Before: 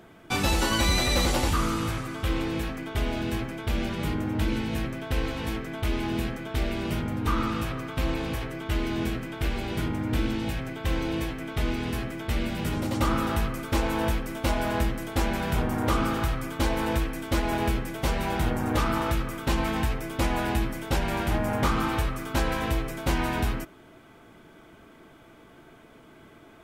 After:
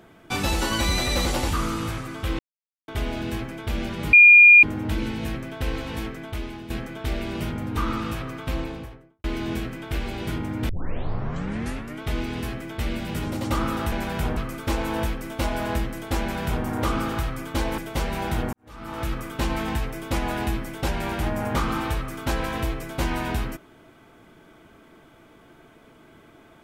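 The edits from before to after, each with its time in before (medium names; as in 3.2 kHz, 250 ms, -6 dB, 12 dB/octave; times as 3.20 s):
2.39–2.88 s: mute
4.13 s: add tone 2.42 kHz -7 dBFS 0.50 s
5.58–6.20 s: fade out, to -12.5 dB
7.92–8.74 s: studio fade out
10.19 s: tape start 1.33 s
15.25–15.70 s: copy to 13.42 s
16.83–17.86 s: delete
18.61–19.20 s: fade in quadratic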